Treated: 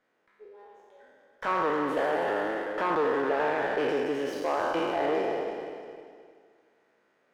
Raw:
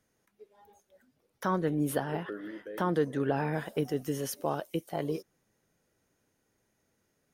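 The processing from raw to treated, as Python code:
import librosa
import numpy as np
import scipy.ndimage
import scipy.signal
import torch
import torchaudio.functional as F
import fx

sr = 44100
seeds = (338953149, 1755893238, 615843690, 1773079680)

p1 = fx.spec_trails(x, sr, decay_s=1.93)
p2 = fx.low_shelf(p1, sr, hz=390.0, db=-8.5)
p3 = fx.rider(p2, sr, range_db=10, speed_s=0.5)
p4 = p2 + (p3 * 10.0 ** (0.5 / 20.0))
p5 = np.clip(p4, -10.0 ** (-21.0 / 20.0), 10.0 ** (-21.0 / 20.0))
p6 = fx.bandpass_edges(p5, sr, low_hz=280.0, high_hz=2300.0)
p7 = p6 + fx.echo_feedback(p6, sr, ms=308, feedback_pct=32, wet_db=-11, dry=0)
y = fx.running_max(p7, sr, window=3)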